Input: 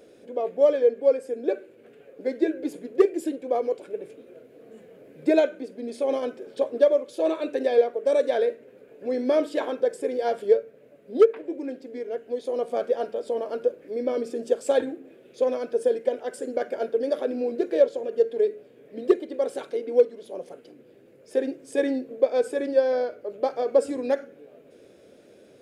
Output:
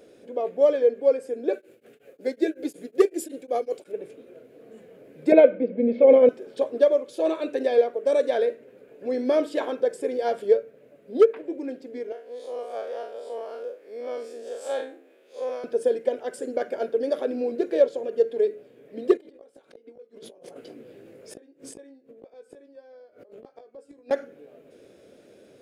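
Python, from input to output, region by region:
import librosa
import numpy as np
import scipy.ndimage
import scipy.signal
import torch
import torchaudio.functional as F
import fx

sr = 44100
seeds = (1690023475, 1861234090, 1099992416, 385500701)

y = fx.chain(x, sr, fx.high_shelf(hz=4300.0, db=11.0),
    fx.notch(hz=980.0, q=9.3),
    fx.tremolo_abs(hz=5.4), at=(1.53, 3.92))
y = fx.chain(y, sr, fx.lowpass(hz=3000.0, slope=24),
    fx.small_body(hz=(210.0, 500.0, 2200.0), ring_ms=50, db=16), at=(5.32, 6.29))
y = fx.chain(y, sr, fx.spec_blur(span_ms=100.0),
    fx.highpass(hz=540.0, slope=12), at=(12.12, 15.64))
y = fx.chain(y, sr, fx.gate_flip(shuts_db=-22.0, range_db=-32),
    fx.doubler(ms=18.0, db=-7.0),
    fx.over_compress(threshold_db=-46.0, ratio=-1.0), at=(19.17, 24.11))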